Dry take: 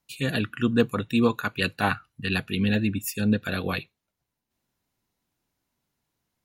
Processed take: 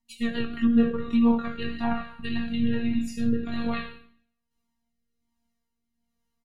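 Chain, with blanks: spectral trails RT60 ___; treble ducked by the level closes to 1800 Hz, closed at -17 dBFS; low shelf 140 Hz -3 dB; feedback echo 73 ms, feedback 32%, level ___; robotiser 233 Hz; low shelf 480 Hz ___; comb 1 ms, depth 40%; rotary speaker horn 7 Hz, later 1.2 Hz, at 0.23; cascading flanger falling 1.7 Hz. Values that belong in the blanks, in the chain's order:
0.63 s, -18.5 dB, +11 dB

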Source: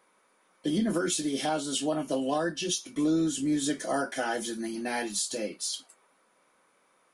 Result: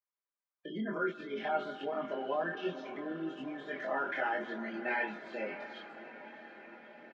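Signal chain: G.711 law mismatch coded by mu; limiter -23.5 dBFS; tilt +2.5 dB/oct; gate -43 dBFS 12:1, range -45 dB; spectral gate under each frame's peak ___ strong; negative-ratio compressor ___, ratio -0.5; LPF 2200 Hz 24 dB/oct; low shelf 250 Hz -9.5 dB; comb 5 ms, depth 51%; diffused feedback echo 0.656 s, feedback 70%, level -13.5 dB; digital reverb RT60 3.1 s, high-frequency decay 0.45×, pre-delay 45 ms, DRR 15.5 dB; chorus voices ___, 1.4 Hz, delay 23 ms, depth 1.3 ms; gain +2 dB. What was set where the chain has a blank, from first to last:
-25 dB, -31 dBFS, 4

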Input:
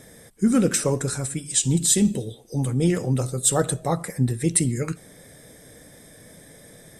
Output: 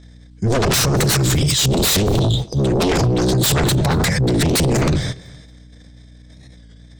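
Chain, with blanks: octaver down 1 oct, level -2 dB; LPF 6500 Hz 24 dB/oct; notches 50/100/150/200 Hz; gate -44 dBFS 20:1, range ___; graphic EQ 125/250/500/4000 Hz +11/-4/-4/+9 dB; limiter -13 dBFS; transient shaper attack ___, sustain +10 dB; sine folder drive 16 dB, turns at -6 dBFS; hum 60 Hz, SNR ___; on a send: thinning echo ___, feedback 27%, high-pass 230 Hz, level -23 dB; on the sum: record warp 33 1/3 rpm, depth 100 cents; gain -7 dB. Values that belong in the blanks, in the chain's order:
-21 dB, -11 dB, 25 dB, 0.231 s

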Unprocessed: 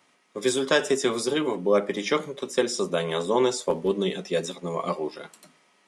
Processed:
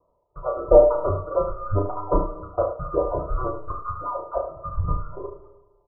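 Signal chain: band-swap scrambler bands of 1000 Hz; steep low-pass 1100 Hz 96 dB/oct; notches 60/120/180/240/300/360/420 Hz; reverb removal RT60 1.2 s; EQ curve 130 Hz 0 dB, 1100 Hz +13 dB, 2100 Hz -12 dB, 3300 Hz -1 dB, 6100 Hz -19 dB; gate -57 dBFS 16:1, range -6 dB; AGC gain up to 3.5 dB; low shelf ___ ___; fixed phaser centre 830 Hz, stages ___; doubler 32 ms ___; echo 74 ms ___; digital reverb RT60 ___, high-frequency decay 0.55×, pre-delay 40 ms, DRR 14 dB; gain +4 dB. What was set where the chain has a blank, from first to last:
180 Hz, +7 dB, 6, -5 dB, -8.5 dB, 1.2 s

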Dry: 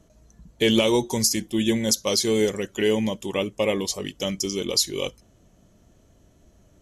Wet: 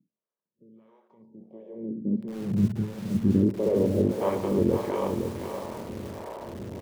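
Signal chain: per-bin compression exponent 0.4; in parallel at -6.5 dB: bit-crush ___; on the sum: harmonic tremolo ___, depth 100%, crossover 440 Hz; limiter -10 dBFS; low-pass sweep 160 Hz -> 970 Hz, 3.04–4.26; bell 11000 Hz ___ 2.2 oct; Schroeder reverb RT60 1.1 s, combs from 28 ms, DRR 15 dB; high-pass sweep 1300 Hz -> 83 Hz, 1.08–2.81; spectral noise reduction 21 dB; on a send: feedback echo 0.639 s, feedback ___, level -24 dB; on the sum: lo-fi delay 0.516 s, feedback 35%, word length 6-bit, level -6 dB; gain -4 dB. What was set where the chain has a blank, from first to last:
4-bit, 1.5 Hz, -7 dB, 52%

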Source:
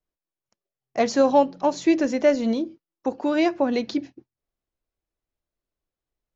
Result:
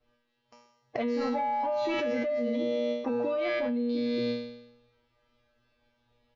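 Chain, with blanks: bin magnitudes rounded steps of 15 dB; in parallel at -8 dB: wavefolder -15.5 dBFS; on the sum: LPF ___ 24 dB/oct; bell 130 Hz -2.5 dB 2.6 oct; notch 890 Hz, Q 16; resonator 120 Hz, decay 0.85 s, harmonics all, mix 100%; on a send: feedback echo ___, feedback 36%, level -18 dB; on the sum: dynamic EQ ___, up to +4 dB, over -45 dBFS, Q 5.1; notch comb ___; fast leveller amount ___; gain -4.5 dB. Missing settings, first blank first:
4100 Hz, 86 ms, 240 Hz, 180 Hz, 100%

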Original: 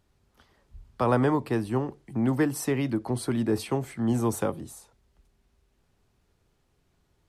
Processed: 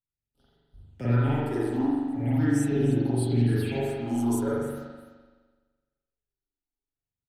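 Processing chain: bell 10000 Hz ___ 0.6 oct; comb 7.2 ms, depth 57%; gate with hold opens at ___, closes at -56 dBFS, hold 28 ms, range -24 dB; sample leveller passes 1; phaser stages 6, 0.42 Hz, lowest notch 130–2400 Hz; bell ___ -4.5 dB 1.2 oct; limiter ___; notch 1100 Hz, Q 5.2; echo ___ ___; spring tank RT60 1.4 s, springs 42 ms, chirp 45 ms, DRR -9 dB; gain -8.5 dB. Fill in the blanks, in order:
+2.5 dB, -53 dBFS, 870 Hz, -17.5 dBFS, 0.298 s, -15 dB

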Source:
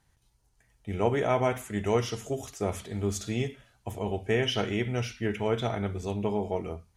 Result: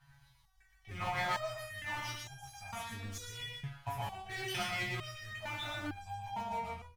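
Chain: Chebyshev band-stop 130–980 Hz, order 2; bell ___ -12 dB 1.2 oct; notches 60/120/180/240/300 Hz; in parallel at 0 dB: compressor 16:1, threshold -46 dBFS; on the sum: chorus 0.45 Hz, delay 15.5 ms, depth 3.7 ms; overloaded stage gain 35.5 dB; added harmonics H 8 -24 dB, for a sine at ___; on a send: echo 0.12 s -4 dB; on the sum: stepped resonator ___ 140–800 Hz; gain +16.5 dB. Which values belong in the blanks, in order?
8100 Hz, -35.5 dBFS, 2.2 Hz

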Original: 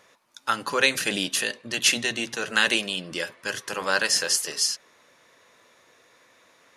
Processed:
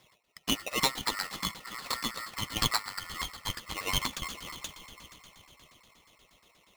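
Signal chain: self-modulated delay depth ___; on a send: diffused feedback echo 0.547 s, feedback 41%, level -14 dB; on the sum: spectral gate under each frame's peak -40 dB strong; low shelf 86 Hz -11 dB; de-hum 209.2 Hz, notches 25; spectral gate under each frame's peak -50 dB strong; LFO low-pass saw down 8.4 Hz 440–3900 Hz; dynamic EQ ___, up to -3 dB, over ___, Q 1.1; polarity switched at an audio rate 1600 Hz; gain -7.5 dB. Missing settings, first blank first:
0.077 ms, 660 Hz, -38 dBFS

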